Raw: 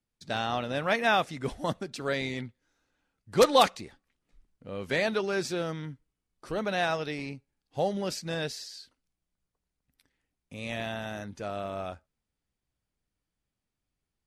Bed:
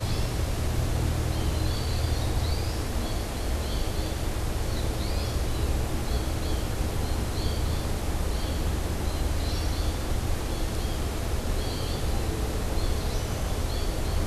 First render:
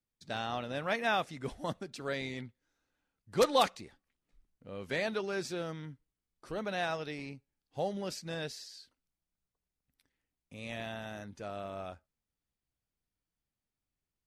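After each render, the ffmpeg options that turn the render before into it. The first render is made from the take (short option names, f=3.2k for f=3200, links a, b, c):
-af "volume=-6dB"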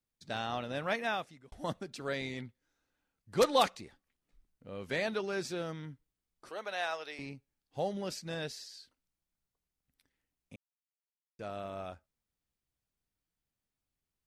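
-filter_complex "[0:a]asettb=1/sr,asplit=3[a][b][c];[a]atrim=end=6.494[d];[b]atrim=start=6.49:end=7.19,asetpts=PTS-STARTPTS,afade=t=in:d=0.004:c=qsin,afade=t=out:st=0.696:d=0.004:c=qsin,highpass=580[e];[c]atrim=start=7.186[f];[d][e]acrossfade=d=0.004:c1=hsin:c2=qsin[g];[g][f]acrossfade=d=0.004:c1=qsin:c2=hsin,asplit=4[h][i][j][k];[h]atrim=end=1.52,asetpts=PTS-STARTPTS,afade=t=out:st=0.89:d=0.63[l];[i]atrim=start=1.52:end=10.56,asetpts=PTS-STARTPTS,afade=t=in:d=0.004:c=hsin,afade=t=out:st=9.036:d=0.004:c=hsin[m];[j]atrim=start=10.56:end=11.39,asetpts=PTS-STARTPTS,volume=0[n];[k]atrim=start=11.39,asetpts=PTS-STARTPTS,afade=t=in:d=0.004:c=hsin[o];[l][m][n][o]concat=n=4:v=0:a=1"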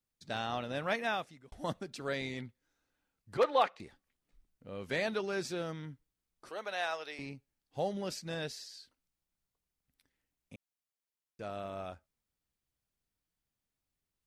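-filter_complex "[0:a]asettb=1/sr,asplit=3[a][b][c];[a]atrim=end=3.374[d];[b]atrim=start=3.37:end=3.8,asetpts=PTS-STARTPTS,afade=t=in:d=0.004:c=qsin,afade=t=out:st=0.426:d=0.004:c=qsin,acrossover=split=350 3100:gain=0.158 1 0.1[e][f][g];[e][f][g]amix=inputs=3:normalize=0[h];[c]atrim=start=3.796[i];[d][h]acrossfade=d=0.004:c1=hsin:c2=qsin[j];[j][i]acrossfade=d=0.004:c1=qsin:c2=hsin"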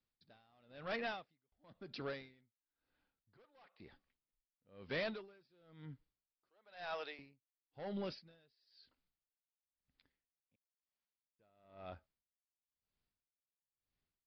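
-af "aresample=11025,asoftclip=type=tanh:threshold=-33.5dB,aresample=44100,aeval=exprs='val(0)*pow(10,-33*(0.5-0.5*cos(2*PI*1*n/s))/20)':c=same"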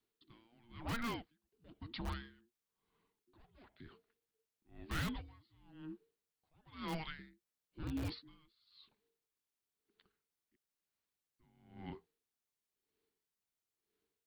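-filter_complex "[0:a]afreqshift=-470,asplit=2[a][b];[b]aeval=exprs='(mod(56.2*val(0)+1,2)-1)/56.2':c=same,volume=-8dB[c];[a][c]amix=inputs=2:normalize=0"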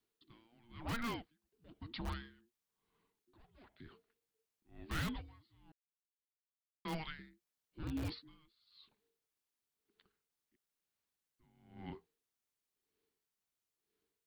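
-filter_complex "[0:a]asplit=3[a][b][c];[a]atrim=end=5.72,asetpts=PTS-STARTPTS,afade=t=out:st=5.716:d=0.004:c=hsin[d];[b]atrim=start=5.72:end=6.85,asetpts=PTS-STARTPTS,volume=0[e];[c]atrim=start=6.85,asetpts=PTS-STARTPTS,afade=t=in:d=0.004:c=hsin[f];[d][e][f]concat=n=3:v=0:a=1"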